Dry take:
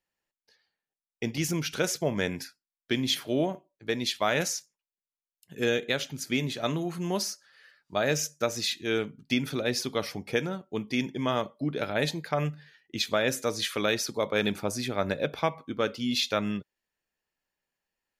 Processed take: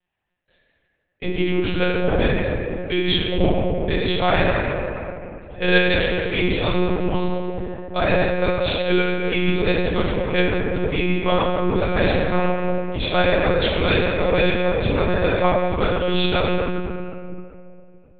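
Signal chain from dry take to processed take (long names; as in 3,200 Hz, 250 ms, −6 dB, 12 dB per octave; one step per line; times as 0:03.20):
convolution reverb RT60 2.9 s, pre-delay 6 ms, DRR −8 dB
one-pitch LPC vocoder at 8 kHz 180 Hz
level +1.5 dB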